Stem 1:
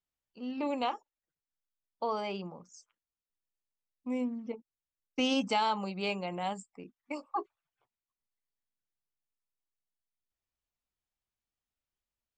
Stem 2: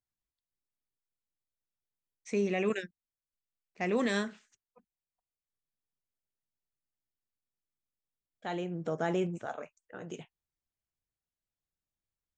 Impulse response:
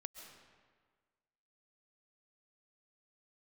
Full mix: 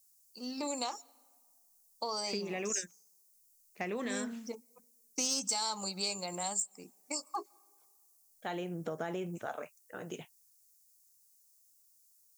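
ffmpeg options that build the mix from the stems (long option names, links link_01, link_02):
-filter_complex "[0:a]aexciter=amount=15.8:drive=8.3:freq=4800,asoftclip=type=tanh:threshold=-13dB,volume=-1dB,asplit=2[link_01][link_02];[link_02]volume=-20.5dB[link_03];[1:a]acompressor=threshold=-31dB:ratio=6,volume=2dB[link_04];[2:a]atrim=start_sample=2205[link_05];[link_03][link_05]afir=irnorm=-1:irlink=0[link_06];[link_01][link_04][link_06]amix=inputs=3:normalize=0,lowshelf=frequency=350:gain=-4.5,acompressor=threshold=-34dB:ratio=2.5"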